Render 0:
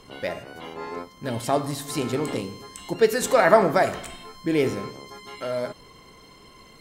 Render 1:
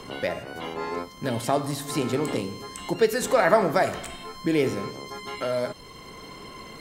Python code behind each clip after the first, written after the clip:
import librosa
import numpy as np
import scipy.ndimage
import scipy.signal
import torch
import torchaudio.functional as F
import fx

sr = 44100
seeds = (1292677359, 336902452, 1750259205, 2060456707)

y = fx.band_squash(x, sr, depth_pct=40)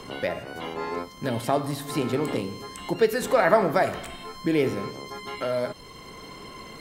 y = fx.dynamic_eq(x, sr, hz=7000.0, q=1.1, threshold_db=-48.0, ratio=4.0, max_db=-6)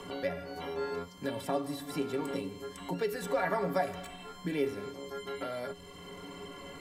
y = fx.stiff_resonator(x, sr, f0_hz=84.0, decay_s=0.25, stiffness=0.03)
y = fx.band_squash(y, sr, depth_pct=40)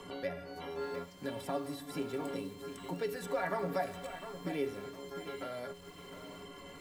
y = fx.echo_crushed(x, sr, ms=706, feedback_pct=35, bits=8, wet_db=-10.5)
y = F.gain(torch.from_numpy(y), -4.0).numpy()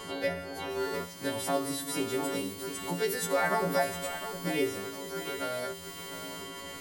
y = fx.freq_snap(x, sr, grid_st=2)
y = F.gain(torch.from_numpy(y), 6.5).numpy()